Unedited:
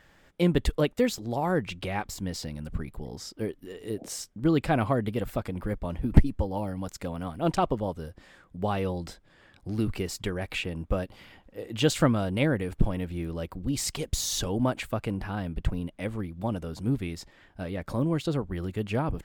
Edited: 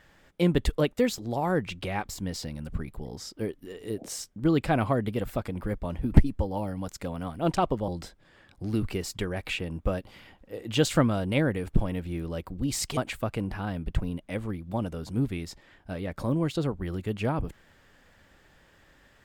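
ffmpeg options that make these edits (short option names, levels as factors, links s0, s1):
-filter_complex "[0:a]asplit=3[s0][s1][s2];[s0]atrim=end=7.882[s3];[s1]atrim=start=8.928:end=14.022[s4];[s2]atrim=start=14.668[s5];[s3][s4]acrossfade=d=0.004:c1=hsin:c2=hsin[s6];[s6][s5]acrossfade=d=0.004:c1=hsin:c2=hsin"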